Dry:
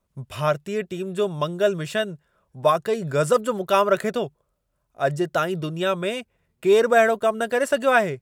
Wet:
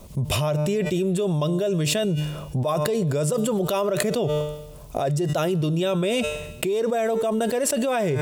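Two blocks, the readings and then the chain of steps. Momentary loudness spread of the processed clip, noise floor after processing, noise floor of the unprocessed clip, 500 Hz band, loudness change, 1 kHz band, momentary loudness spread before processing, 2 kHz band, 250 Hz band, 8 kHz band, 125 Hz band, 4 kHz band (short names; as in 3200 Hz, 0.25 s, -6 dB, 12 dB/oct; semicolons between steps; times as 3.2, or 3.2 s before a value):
5 LU, -40 dBFS, -73 dBFS, -2.0 dB, -1.5 dB, -6.0 dB, 10 LU, -7.0 dB, +4.0 dB, +7.5 dB, +7.5 dB, +2.5 dB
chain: bell 1500 Hz -12 dB 1 oct; resonator 150 Hz, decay 0.86 s, harmonics all, mix 40%; fast leveller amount 100%; gain -4.5 dB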